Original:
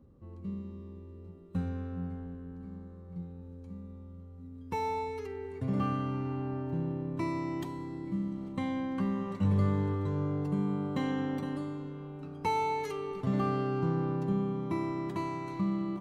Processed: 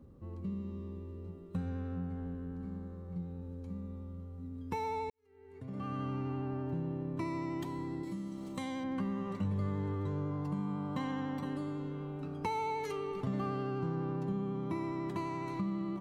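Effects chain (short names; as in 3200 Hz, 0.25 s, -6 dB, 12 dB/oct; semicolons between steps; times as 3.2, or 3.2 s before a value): compressor 2.5:1, threshold -39 dBFS, peak gain reduction 10.5 dB; 8.03–8.84 tone controls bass -6 dB, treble +14 dB; vibrato 12 Hz 21 cents; 5.1–6.01 fade in quadratic; 10.31–11.45 thirty-one-band EQ 400 Hz -9 dB, 1000 Hz +7 dB, 5000 Hz +3 dB; gain +3 dB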